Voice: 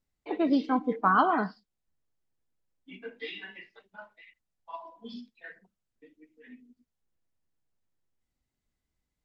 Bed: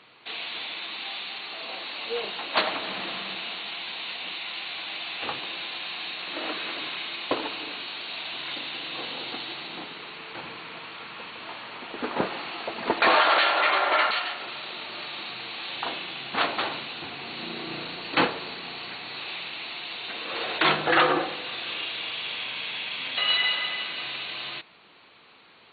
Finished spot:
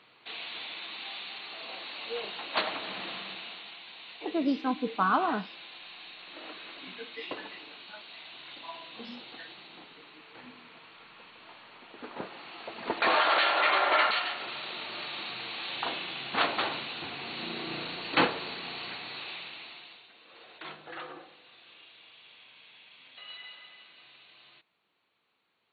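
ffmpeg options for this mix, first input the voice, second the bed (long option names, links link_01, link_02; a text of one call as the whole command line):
ffmpeg -i stem1.wav -i stem2.wav -filter_complex "[0:a]adelay=3950,volume=-3dB[link_01];[1:a]volume=5dB,afade=type=out:start_time=3.13:duration=0.69:silence=0.446684,afade=type=in:start_time=12.32:duration=1.5:silence=0.298538,afade=type=out:start_time=18.88:duration=1.21:silence=0.1[link_02];[link_01][link_02]amix=inputs=2:normalize=0" out.wav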